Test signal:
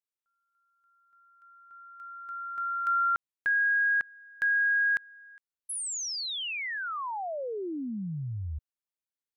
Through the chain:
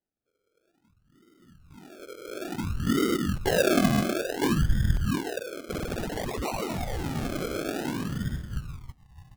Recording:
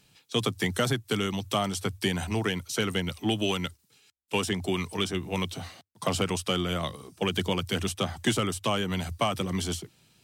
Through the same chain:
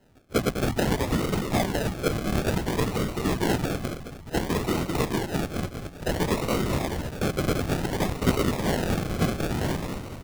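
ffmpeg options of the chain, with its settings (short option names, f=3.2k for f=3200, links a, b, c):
-filter_complex "[0:a]asplit=8[a][b][c][d][e][f][g][h];[b]adelay=211,afreqshift=-40,volume=-4dB[i];[c]adelay=422,afreqshift=-80,volume=-9.7dB[j];[d]adelay=633,afreqshift=-120,volume=-15.4dB[k];[e]adelay=844,afreqshift=-160,volume=-21dB[l];[f]adelay=1055,afreqshift=-200,volume=-26.7dB[m];[g]adelay=1266,afreqshift=-240,volume=-32.4dB[n];[h]adelay=1477,afreqshift=-280,volume=-38.1dB[o];[a][i][j][k][l][m][n][o]amix=inputs=8:normalize=0,afftfilt=real='hypot(re,im)*cos(2*PI*random(0))':imag='hypot(re,im)*sin(2*PI*random(1))':win_size=512:overlap=0.75,acrusher=samples=37:mix=1:aa=0.000001:lfo=1:lforange=22.2:lforate=0.57,volume=7.5dB"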